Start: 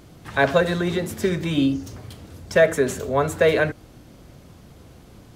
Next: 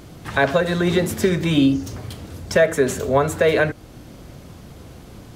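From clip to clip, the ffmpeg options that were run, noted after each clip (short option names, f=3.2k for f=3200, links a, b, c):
-af "alimiter=limit=-12.5dB:level=0:latency=1:release=405,volume=6dB"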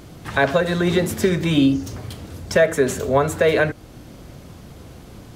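-af anull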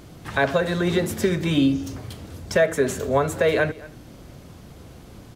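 -filter_complex "[0:a]asplit=2[a][b];[b]adelay=227.4,volume=-20dB,highshelf=f=4k:g=-5.12[c];[a][c]amix=inputs=2:normalize=0,volume=-3dB"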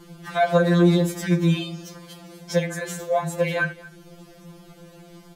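-af "afftfilt=real='re*2.83*eq(mod(b,8),0)':imag='im*2.83*eq(mod(b,8),0)':win_size=2048:overlap=0.75,volume=1dB"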